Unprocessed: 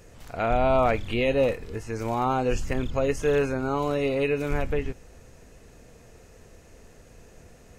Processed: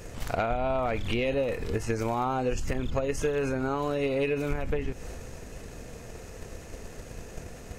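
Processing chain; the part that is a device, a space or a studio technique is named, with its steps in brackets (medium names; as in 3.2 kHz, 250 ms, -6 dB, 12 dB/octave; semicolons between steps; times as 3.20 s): drum-bus smash (transient shaper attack +9 dB, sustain +5 dB; compression 10:1, threshold -30 dBFS, peak gain reduction 16.5 dB; saturation -22.5 dBFS, distortion -22 dB); trim +6.5 dB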